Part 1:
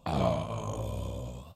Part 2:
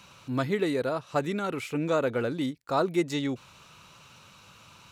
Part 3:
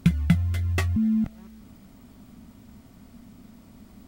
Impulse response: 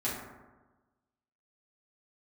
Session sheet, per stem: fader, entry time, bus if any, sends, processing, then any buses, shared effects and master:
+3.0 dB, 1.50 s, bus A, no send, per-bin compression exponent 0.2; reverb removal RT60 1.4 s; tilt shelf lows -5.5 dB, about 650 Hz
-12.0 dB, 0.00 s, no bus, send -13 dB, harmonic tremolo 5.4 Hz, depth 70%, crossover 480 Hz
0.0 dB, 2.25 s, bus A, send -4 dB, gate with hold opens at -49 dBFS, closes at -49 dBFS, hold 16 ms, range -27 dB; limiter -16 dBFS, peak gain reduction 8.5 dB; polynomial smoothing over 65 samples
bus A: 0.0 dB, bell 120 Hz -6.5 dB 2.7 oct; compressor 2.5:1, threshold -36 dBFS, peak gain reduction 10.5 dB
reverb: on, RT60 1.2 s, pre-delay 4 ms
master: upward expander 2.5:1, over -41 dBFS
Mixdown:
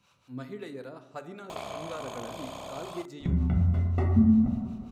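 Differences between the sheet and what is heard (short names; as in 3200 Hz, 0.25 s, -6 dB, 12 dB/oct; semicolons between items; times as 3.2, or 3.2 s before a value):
stem 1 +3.0 dB -> -6.0 dB; stem 3: entry 2.25 s -> 3.20 s; master: missing upward expander 2.5:1, over -41 dBFS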